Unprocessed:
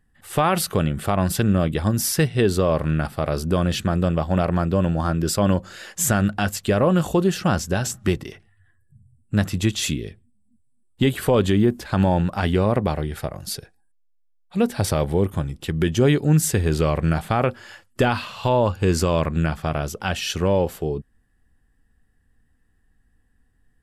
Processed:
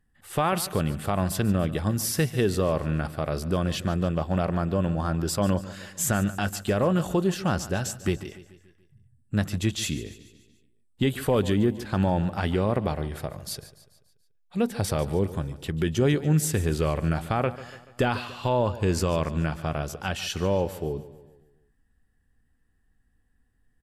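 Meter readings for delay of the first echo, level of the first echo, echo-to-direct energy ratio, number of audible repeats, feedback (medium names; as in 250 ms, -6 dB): 144 ms, -16.0 dB, -14.5 dB, 4, 51%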